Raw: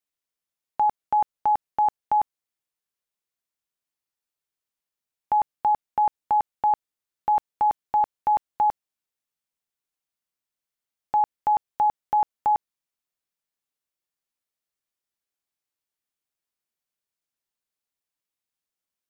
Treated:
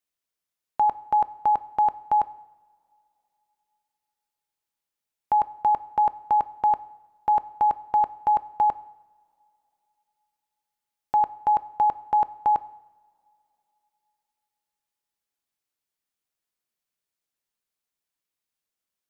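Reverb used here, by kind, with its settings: two-slope reverb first 0.81 s, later 3.1 s, from -20 dB, DRR 15 dB; trim +1 dB

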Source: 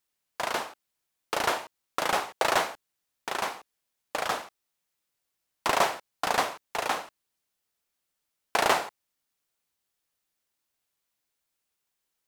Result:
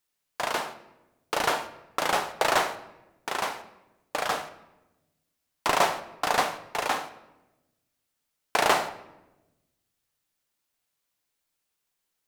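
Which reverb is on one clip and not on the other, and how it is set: simulated room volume 440 m³, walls mixed, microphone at 0.4 m; trim +1 dB

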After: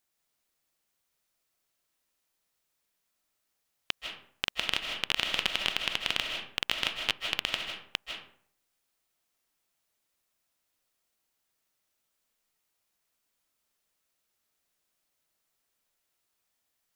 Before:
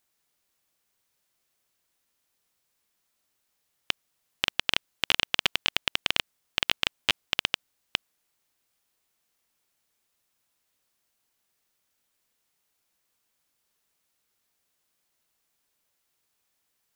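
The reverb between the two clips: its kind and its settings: algorithmic reverb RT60 0.59 s, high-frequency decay 0.6×, pre-delay 115 ms, DRR 3 dB; trim -4.5 dB

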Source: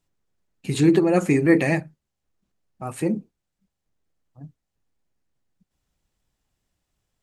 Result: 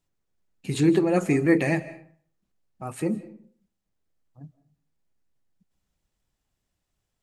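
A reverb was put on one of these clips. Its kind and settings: algorithmic reverb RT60 0.53 s, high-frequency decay 0.65×, pre-delay 120 ms, DRR 16.5 dB; trim -3 dB

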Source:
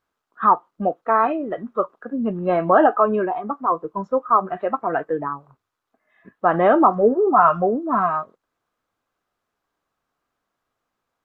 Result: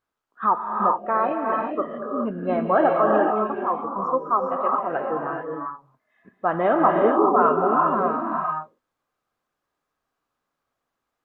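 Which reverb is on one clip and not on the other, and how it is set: gated-style reverb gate 450 ms rising, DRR 0 dB; trim -5 dB

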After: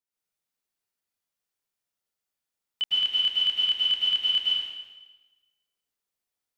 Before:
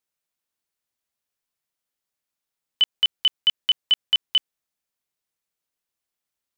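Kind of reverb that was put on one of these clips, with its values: plate-style reverb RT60 1.2 s, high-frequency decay 0.95×, pre-delay 95 ms, DRR -7 dB; trim -9.5 dB

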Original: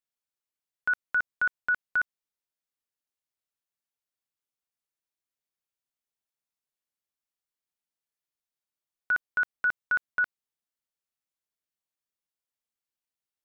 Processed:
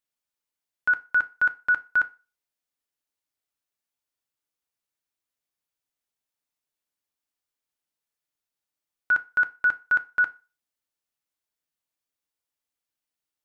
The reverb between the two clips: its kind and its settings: FDN reverb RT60 0.31 s, low-frequency decay 0.8×, high-frequency decay 0.85×, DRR 9.5 dB; trim +2.5 dB

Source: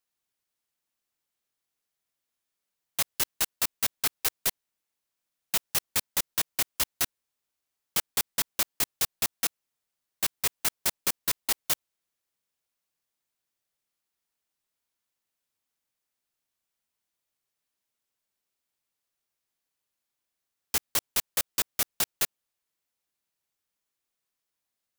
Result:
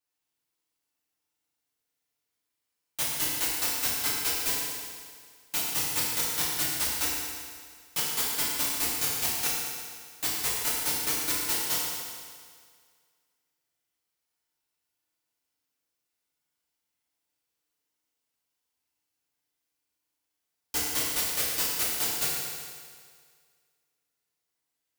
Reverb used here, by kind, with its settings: FDN reverb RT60 1.9 s, low-frequency decay 0.9×, high-frequency decay 0.95×, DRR -8 dB; trim -7 dB

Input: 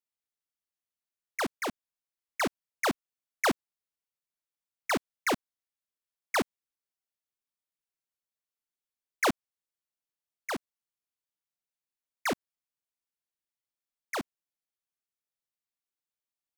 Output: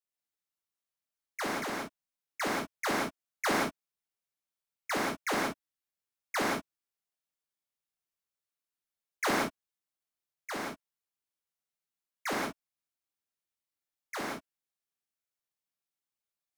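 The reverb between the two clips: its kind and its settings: gated-style reverb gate 200 ms flat, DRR -5 dB; trim -6.5 dB

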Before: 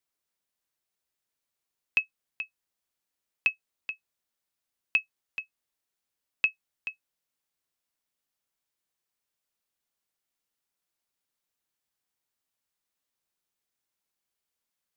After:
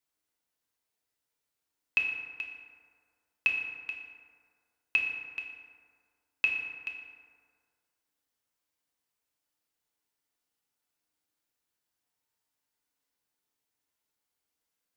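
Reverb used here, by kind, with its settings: FDN reverb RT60 1.9 s, low-frequency decay 0.9×, high-frequency decay 0.45×, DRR -0.5 dB; trim -2 dB

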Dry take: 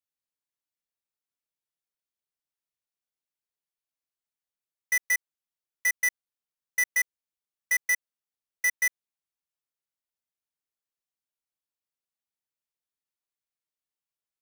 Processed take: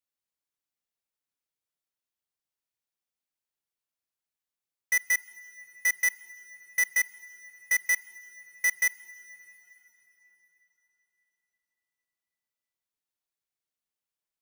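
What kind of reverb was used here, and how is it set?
plate-style reverb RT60 4.5 s, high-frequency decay 0.8×, DRR 17 dB

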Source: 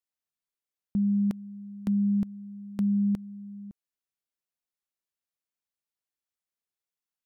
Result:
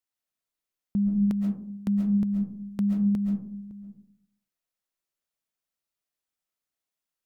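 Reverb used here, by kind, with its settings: algorithmic reverb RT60 0.6 s, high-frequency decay 0.3×, pre-delay 95 ms, DRR 1.5 dB; trim +1 dB

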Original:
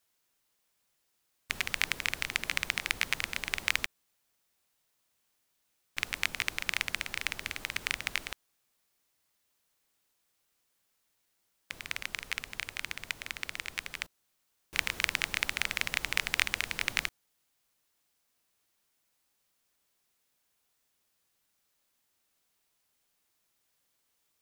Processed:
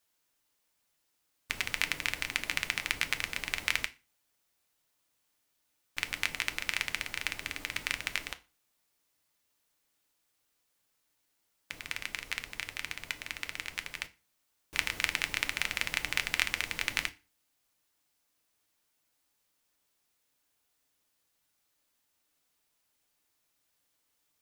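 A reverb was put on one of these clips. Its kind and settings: FDN reverb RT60 0.31 s, low-frequency decay 1.2×, high-frequency decay 0.9×, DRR 9 dB; trim -1 dB

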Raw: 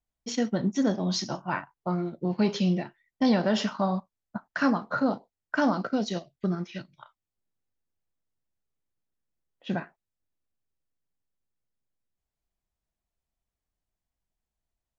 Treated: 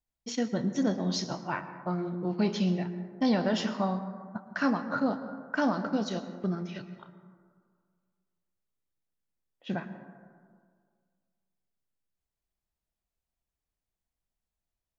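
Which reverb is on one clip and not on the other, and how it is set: plate-style reverb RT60 1.9 s, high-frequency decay 0.3×, pre-delay 100 ms, DRR 11 dB; trim -3 dB

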